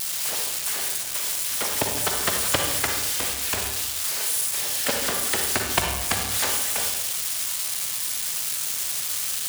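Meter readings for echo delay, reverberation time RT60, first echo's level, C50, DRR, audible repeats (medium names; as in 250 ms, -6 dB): no echo, 1.1 s, no echo, 3.0 dB, 2.0 dB, no echo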